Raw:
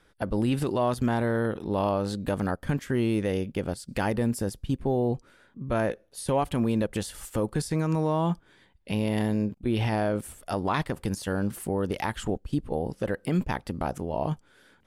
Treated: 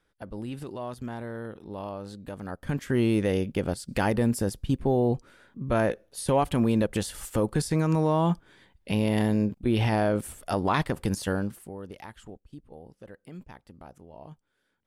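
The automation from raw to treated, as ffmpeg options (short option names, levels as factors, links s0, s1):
-af "volume=1.26,afade=t=in:st=2.44:d=0.55:silence=0.237137,afade=t=out:st=11.29:d=0.3:silence=0.223872,afade=t=out:st=11.59:d=0.9:silence=0.473151"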